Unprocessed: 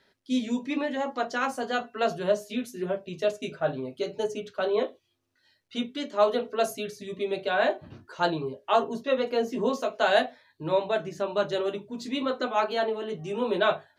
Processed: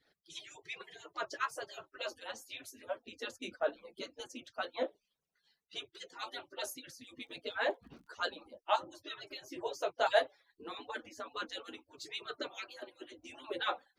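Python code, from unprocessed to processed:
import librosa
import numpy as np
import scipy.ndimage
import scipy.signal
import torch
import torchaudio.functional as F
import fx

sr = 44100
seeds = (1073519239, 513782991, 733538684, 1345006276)

y = fx.hpss_only(x, sr, part='percussive')
y = fx.dmg_crackle(y, sr, seeds[0], per_s=69.0, level_db=-56.0, at=(6.97, 8.14), fade=0.02)
y = y * 10.0 ** (-4.5 / 20.0)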